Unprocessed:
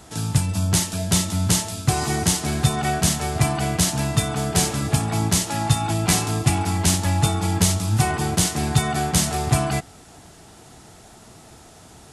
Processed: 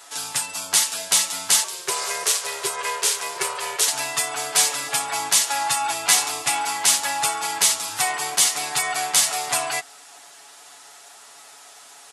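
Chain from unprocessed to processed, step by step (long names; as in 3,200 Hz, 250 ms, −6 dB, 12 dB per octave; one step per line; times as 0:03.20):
comb filter 7.1 ms, depth 72%
0:01.64–0:03.88: ring modulation 260 Hz
high-pass filter 950 Hz 12 dB per octave
level +3 dB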